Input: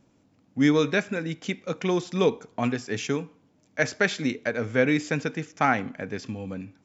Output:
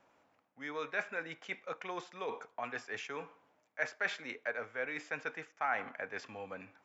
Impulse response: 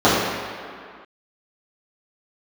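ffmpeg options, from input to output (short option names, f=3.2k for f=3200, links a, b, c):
-filter_complex "[0:a]areverse,acompressor=threshold=-34dB:ratio=5,areverse,acrossover=split=590 2400:gain=0.0631 1 0.178[a][b][c];[a][b][c]amix=inputs=3:normalize=0,volume=5.5dB"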